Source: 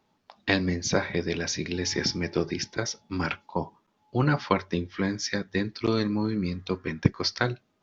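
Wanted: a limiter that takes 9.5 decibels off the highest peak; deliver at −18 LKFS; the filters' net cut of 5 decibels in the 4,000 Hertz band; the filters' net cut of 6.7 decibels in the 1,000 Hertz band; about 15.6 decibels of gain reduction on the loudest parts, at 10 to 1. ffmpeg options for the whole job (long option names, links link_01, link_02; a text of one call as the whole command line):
ffmpeg -i in.wav -af "equalizer=frequency=1000:width_type=o:gain=-8.5,equalizer=frequency=4000:width_type=o:gain=-6.5,acompressor=threshold=-30dB:ratio=10,volume=19.5dB,alimiter=limit=-5.5dB:level=0:latency=1" out.wav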